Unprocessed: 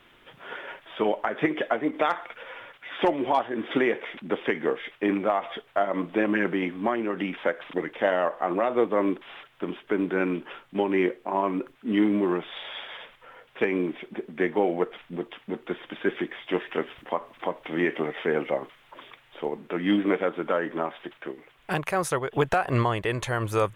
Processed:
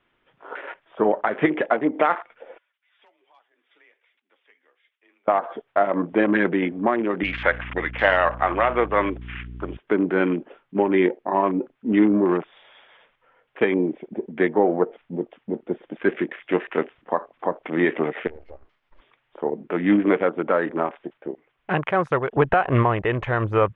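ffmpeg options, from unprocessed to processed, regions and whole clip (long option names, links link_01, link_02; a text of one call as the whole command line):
ffmpeg -i in.wav -filter_complex "[0:a]asettb=1/sr,asplit=3[link_01][link_02][link_03];[link_01]atrim=end=2.584[link_04];[link_02]atrim=start=2.58:end=5.28,asetpts=PTS-STARTPTS,afade=type=in:duration=0.004:curve=qsin,afade=type=out:start_time=2.696:duration=0.004:curve=qsin,aderivative,flanger=delay=1.6:depth=3.6:regen=64:speed=1.3:shape=triangular,afreqshift=28[link_05];[link_03]atrim=start=5.276[link_06];[link_04][link_05]acrossfade=duration=0.004:curve1=hsin:curve2=qsin[link_07];[link_07][link_06]acrossfade=duration=0.004:curve1=qsin:curve2=hsin,asettb=1/sr,asplit=3[link_08][link_09][link_10];[link_08]atrim=end=7.234[link_11];[link_09]atrim=start=7.23:end=9.77,asetpts=PTS-STARTPTS,afade=type=in:duration=0.004:curve=qsin,afade=type=out:start_time=2.536:duration=0.004:curve=qsin,lowpass=frequency=4200:width=0.5412,lowpass=frequency=4200:width=1.3066,tiltshelf=frequency=750:gain=-10,aeval=exprs='val(0)+0.01*(sin(2*PI*60*n/s)+sin(2*PI*2*60*n/s)/2+sin(2*PI*3*60*n/s)/3+sin(2*PI*4*60*n/s)/4+sin(2*PI*5*60*n/s)/5)':channel_layout=same[link_12];[link_10]atrim=start=9.766[link_13];[link_11][link_12]acrossfade=duration=0.004:curve1=hsin:curve2=qsin[link_14];[link_14][link_13]acrossfade=duration=0.004:curve1=qsin:curve2=hsin,asettb=1/sr,asplit=3[link_15][link_16][link_17];[link_15]atrim=end=18.274[link_18];[link_16]atrim=start=18.27:end=19,asetpts=PTS-STARTPTS,afade=type=in:duration=0.004:curve=qsin,afade=type=out:start_time=0.726:duration=0.004:curve=qsin,acompressor=threshold=-39dB:ratio=4:attack=3.2:release=140:knee=1:detection=peak,aeval=exprs='max(val(0),0)':channel_layout=same[link_19];[link_17]atrim=start=18.996[link_20];[link_18][link_19]acrossfade=duration=0.004:curve1=hsin:curve2=qsin[link_21];[link_21][link_20]acrossfade=duration=0.004:curve1=qsin:curve2=hsin,afwtdn=0.0158,lowpass=2900,volume=5dB" out.wav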